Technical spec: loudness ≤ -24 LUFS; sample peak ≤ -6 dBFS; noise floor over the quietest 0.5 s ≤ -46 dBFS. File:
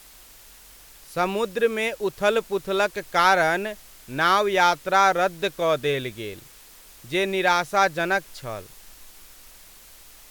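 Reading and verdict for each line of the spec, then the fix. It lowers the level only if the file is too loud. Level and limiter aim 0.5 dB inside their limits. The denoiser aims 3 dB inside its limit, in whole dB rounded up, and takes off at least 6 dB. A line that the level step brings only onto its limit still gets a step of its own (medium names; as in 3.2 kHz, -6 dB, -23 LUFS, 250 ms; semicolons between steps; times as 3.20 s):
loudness -22.5 LUFS: fail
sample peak -4.5 dBFS: fail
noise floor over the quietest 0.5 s -48 dBFS: pass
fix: trim -2 dB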